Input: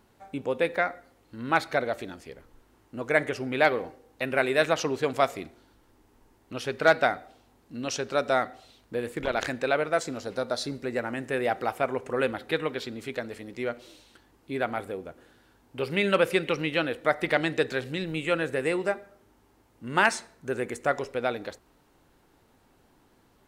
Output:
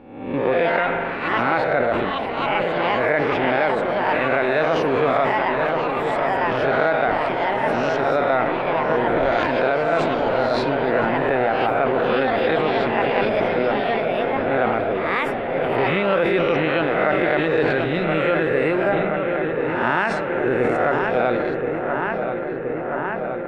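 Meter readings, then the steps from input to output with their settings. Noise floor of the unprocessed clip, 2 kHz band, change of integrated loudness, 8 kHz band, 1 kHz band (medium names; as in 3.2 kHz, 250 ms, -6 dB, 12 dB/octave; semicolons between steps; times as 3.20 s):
-63 dBFS, +7.5 dB, +7.5 dB, under -10 dB, +10.5 dB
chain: reverse spectral sustain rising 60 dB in 0.86 s; in parallel at -8 dB: crossover distortion -33 dBFS; on the sum: filtered feedback delay 1024 ms, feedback 83%, low-pass 3 kHz, level -10 dB; dynamic bell 7.3 kHz, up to +6 dB, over -43 dBFS, Q 1; ever faster or slower copies 198 ms, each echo +5 st, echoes 2, each echo -6 dB; spring tank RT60 3.4 s, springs 41 ms, chirp 50 ms, DRR 16 dB; compression 10:1, threshold -20 dBFS, peak gain reduction 11.5 dB; distance through air 450 m; decay stretcher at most 23 dB/s; trim +6.5 dB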